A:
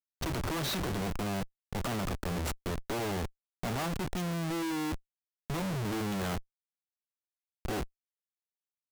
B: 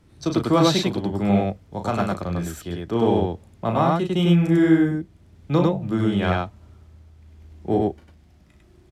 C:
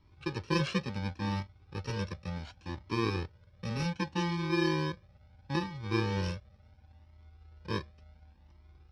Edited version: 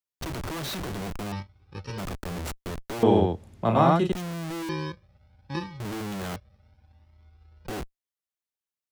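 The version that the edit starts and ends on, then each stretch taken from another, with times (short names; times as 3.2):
A
1.32–1.98 from C
3.03–4.12 from B
4.69–5.8 from C
6.36–7.67 from C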